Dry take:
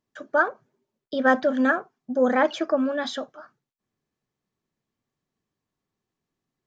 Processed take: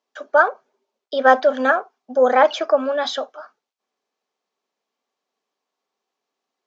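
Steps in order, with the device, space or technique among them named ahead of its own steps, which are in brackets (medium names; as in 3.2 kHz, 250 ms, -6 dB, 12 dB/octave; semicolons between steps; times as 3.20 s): phone speaker on a table (cabinet simulation 330–6700 Hz, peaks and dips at 330 Hz -10 dB, 770 Hz +3 dB, 1.8 kHz -5 dB); trim +7 dB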